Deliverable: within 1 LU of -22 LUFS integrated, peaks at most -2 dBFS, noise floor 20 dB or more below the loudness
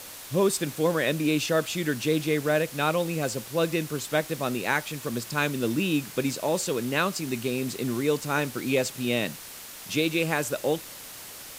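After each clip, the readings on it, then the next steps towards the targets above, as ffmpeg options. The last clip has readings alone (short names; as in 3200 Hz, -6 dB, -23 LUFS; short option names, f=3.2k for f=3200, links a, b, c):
noise floor -42 dBFS; noise floor target -47 dBFS; loudness -27.0 LUFS; peak -9.5 dBFS; loudness target -22.0 LUFS
-> -af "afftdn=nr=6:nf=-42"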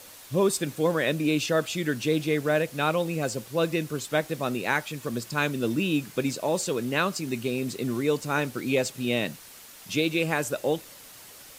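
noise floor -48 dBFS; loudness -27.0 LUFS; peak -10.0 dBFS; loudness target -22.0 LUFS
-> -af "volume=5dB"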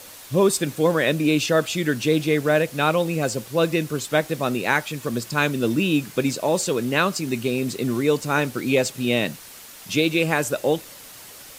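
loudness -22.0 LUFS; peak -5.0 dBFS; noise floor -43 dBFS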